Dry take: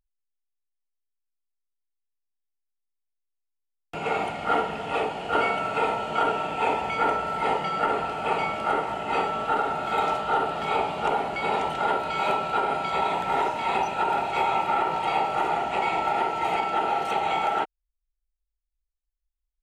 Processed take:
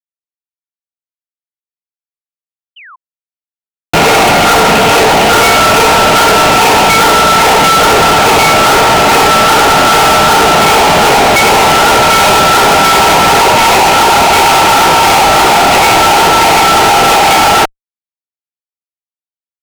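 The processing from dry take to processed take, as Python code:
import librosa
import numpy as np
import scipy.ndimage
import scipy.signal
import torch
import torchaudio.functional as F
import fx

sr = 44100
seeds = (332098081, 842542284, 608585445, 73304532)

y = fx.fuzz(x, sr, gain_db=48.0, gate_db=-51.0)
y = fx.spec_paint(y, sr, seeds[0], shape='fall', start_s=2.76, length_s=0.2, low_hz=960.0, high_hz=3200.0, level_db=-41.0)
y = y * 10.0 ** (7.5 / 20.0)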